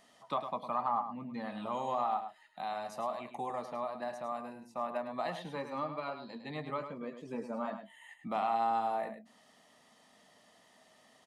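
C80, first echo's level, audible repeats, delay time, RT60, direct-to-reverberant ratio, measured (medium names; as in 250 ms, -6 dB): no reverb, -9.0 dB, 1, 105 ms, no reverb, no reverb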